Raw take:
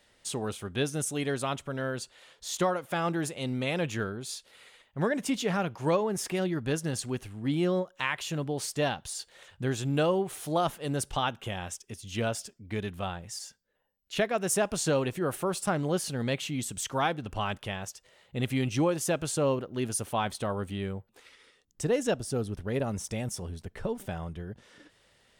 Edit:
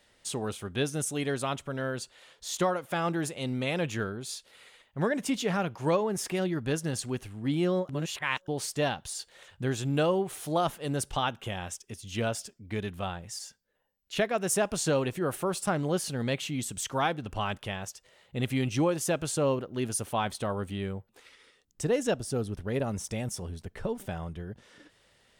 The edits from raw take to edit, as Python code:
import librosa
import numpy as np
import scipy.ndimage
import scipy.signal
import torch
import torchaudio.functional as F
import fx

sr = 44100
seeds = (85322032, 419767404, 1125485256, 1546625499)

y = fx.edit(x, sr, fx.reverse_span(start_s=7.89, length_s=0.59), tone=tone)